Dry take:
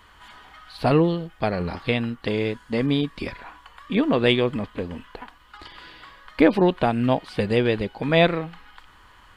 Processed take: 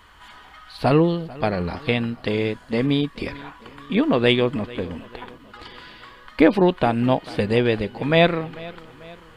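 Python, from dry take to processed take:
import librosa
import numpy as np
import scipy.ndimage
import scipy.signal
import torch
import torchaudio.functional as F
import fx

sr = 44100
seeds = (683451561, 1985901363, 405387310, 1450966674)

y = fx.echo_feedback(x, sr, ms=443, feedback_pct=50, wet_db=-20.0)
y = y * librosa.db_to_amplitude(1.5)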